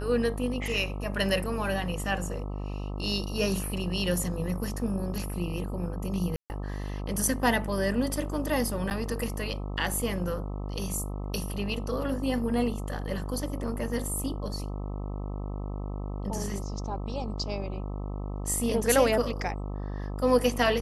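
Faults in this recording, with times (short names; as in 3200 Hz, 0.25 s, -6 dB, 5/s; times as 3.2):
buzz 50 Hz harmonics 26 -34 dBFS
6.36–6.5 gap 0.139 s
8.9–8.91 gap 8.8 ms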